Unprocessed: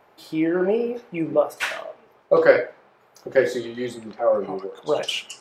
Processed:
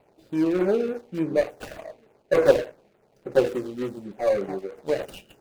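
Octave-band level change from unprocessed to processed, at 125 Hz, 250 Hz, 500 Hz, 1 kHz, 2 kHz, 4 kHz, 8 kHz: +0.5 dB, −0.5 dB, −2.5 dB, −5.5 dB, −8.5 dB, −11.0 dB, can't be measured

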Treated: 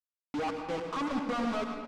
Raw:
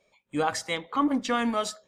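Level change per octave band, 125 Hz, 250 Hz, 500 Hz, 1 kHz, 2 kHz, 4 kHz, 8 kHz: −4.0, −5.5, −4.0, −6.0, −7.5, −9.5, −16.0 decibels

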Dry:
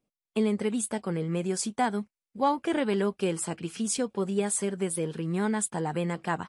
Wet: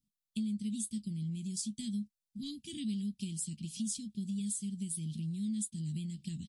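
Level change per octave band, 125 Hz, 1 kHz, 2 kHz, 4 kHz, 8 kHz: −4.5 dB, below −40 dB, −25.5 dB, −6.0 dB, −6.5 dB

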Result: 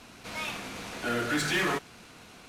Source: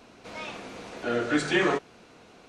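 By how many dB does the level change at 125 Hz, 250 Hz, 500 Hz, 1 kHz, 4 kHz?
+0.5, −4.5, −6.0, −1.0, +1.5 decibels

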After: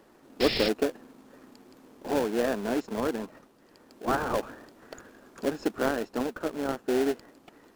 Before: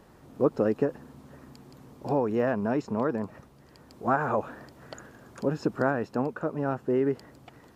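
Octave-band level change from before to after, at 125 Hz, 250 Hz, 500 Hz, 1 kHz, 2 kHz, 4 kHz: −9.0, −1.5, −1.0, −2.5, +1.0, +17.0 decibels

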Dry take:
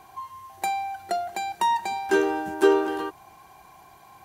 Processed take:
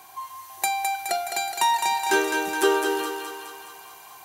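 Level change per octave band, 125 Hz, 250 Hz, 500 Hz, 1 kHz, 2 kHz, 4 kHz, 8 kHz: can't be measured, −3.0 dB, −2.0 dB, +2.0 dB, +5.0 dB, +8.5 dB, +11.5 dB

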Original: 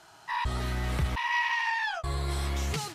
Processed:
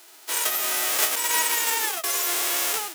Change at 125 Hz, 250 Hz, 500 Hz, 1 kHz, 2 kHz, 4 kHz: below −30 dB, −4.5 dB, +5.5 dB, +1.5 dB, +2.0 dB, +10.5 dB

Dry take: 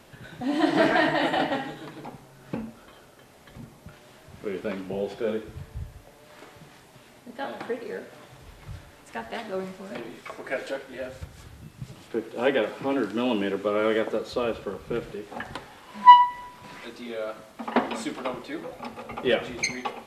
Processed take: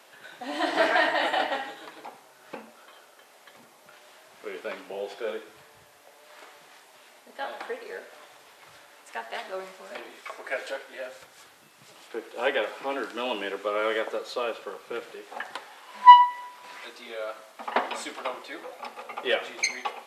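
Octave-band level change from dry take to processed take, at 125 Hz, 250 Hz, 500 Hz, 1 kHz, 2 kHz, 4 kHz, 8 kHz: below −20 dB, −11.5 dB, −3.5 dB, +0.5 dB, +1.0 dB, +1.0 dB, +1.0 dB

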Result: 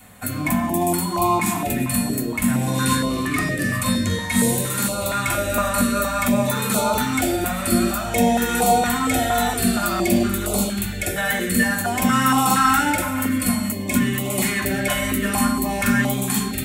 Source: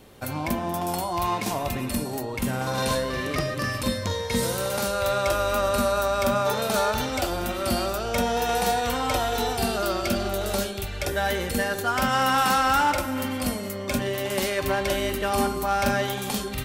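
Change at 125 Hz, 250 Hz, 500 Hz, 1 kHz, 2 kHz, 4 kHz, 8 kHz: +6.5, +9.5, 0.0, +3.0, +5.5, +2.0, +9.0 decibels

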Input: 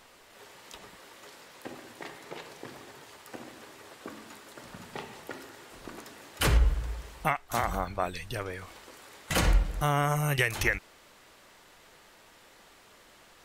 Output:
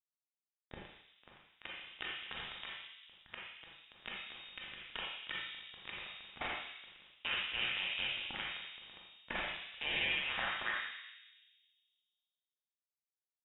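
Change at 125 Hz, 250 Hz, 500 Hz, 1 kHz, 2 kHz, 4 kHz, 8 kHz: −27.5 dB, −18.0 dB, −16.5 dB, −13.5 dB, −4.0 dB, +1.0 dB, below −40 dB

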